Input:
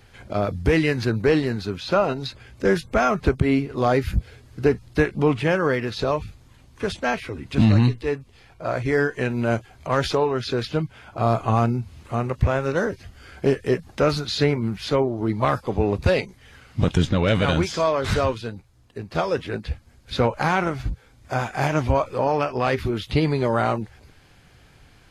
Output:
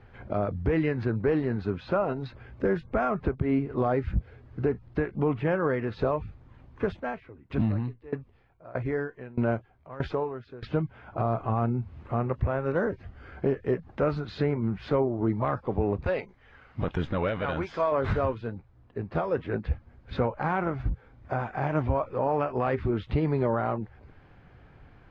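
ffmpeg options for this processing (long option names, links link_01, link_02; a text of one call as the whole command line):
ffmpeg -i in.wav -filter_complex "[0:a]asplit=3[link_01][link_02][link_03];[link_01]afade=type=out:start_time=6.88:duration=0.02[link_04];[link_02]aeval=exprs='val(0)*pow(10,-22*if(lt(mod(1.6*n/s,1),2*abs(1.6)/1000),1-mod(1.6*n/s,1)/(2*abs(1.6)/1000),(mod(1.6*n/s,1)-2*abs(1.6)/1000)/(1-2*abs(1.6)/1000))/20)':channel_layout=same,afade=type=in:start_time=6.88:duration=0.02,afade=type=out:start_time=10.63:duration=0.02[link_05];[link_03]afade=type=in:start_time=10.63:duration=0.02[link_06];[link_04][link_05][link_06]amix=inputs=3:normalize=0,asettb=1/sr,asplit=3[link_07][link_08][link_09];[link_07]atrim=end=16.044[link_10];[link_08]atrim=start=16.04:end=17.92,asetpts=PTS-STARTPTS,afade=type=in:duration=0.004:curve=qsin,afade=type=out:start_time=1.876:duration=0.004:curve=qsin,equalizer=frequency=130:width=0.34:gain=-9.5[link_11];[link_09]atrim=start=17.916[link_12];[link_10][link_11]acrossfade=duration=0.004:curve1=hsin:curve2=qsin[link_13];[link_13][link_12]acrossfade=duration=0.004:curve1=qsin:curve2=hsin,alimiter=limit=-15.5dB:level=0:latency=1:release=460,lowpass=1600" out.wav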